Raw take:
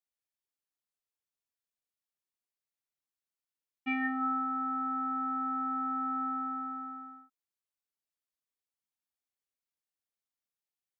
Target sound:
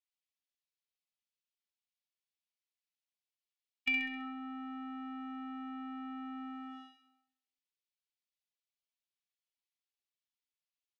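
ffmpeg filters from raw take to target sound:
ffmpeg -i in.wav -filter_complex "[0:a]lowpass=3100,agate=range=-20dB:threshold=-39dB:ratio=16:detection=peak,equalizer=frequency=410:width_type=o:width=2.3:gain=-14,aecho=1:1:3.5:0.73,acrossover=split=560[link_01][link_02];[link_01]alimiter=level_in=20.5dB:limit=-24dB:level=0:latency=1,volume=-20.5dB[link_03];[link_02]acompressor=threshold=-52dB:ratio=6[link_04];[link_03][link_04]amix=inputs=2:normalize=0,aexciter=amount=7.6:drive=4.2:freq=2000,aeval=exprs='0.0376*(cos(1*acos(clip(val(0)/0.0376,-1,1)))-cos(1*PI/2))+0.00119*(cos(2*acos(clip(val(0)/0.0376,-1,1)))-cos(2*PI/2))':channel_layout=same,asplit=2[link_05][link_06];[link_06]aecho=0:1:66|132|198|264|330|396:0.501|0.251|0.125|0.0626|0.0313|0.0157[link_07];[link_05][link_07]amix=inputs=2:normalize=0,volume=5dB" out.wav

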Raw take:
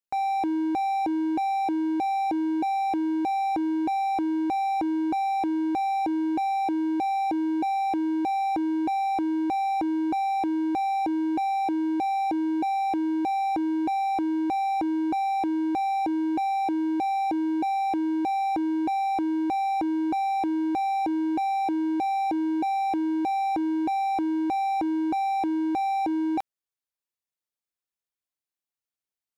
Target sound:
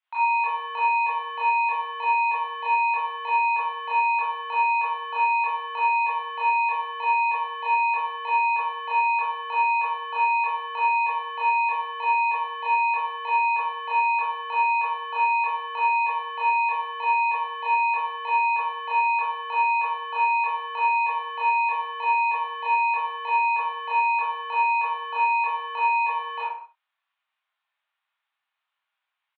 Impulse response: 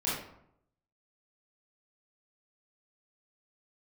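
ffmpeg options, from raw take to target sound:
-filter_complex "[0:a]asplit=2[link_01][link_02];[link_02]highpass=frequency=720:poles=1,volume=24dB,asoftclip=type=tanh:threshold=-20.5dB[link_03];[link_01][link_03]amix=inputs=2:normalize=0,lowpass=frequency=2300:poles=1,volume=-6dB[link_04];[1:a]atrim=start_sample=2205,afade=type=out:start_time=0.3:duration=0.01,atrim=end_sample=13671[link_05];[link_04][link_05]afir=irnorm=-1:irlink=0,highpass=frequency=600:width_type=q:width=0.5412,highpass=frequency=600:width_type=q:width=1.307,lowpass=frequency=3400:width_type=q:width=0.5176,lowpass=frequency=3400:width_type=q:width=0.7071,lowpass=frequency=3400:width_type=q:width=1.932,afreqshift=150,aecho=1:1:65|94:0.251|0.1,volume=-4.5dB"

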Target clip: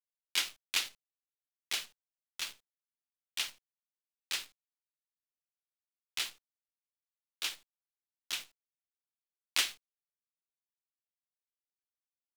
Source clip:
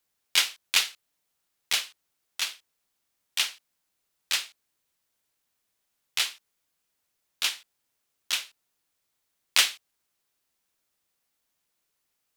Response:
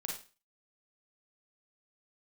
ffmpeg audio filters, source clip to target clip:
-af "equalizer=frequency=320:width_type=o:width=0.56:gain=9,acrusher=bits=7:dc=4:mix=0:aa=0.000001,volume=-9dB"

